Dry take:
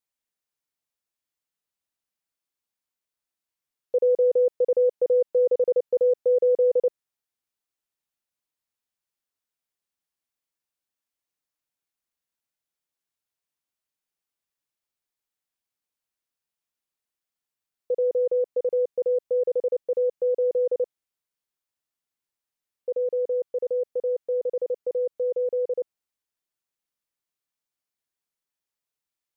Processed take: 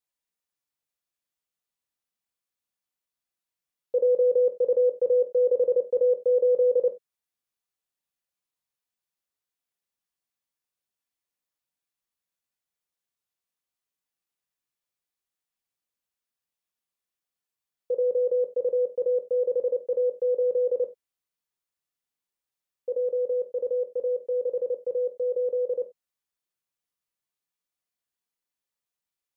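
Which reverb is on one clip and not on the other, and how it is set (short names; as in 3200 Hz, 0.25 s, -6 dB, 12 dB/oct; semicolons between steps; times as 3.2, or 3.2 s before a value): non-linear reverb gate 0.11 s falling, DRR 3.5 dB; gain -3 dB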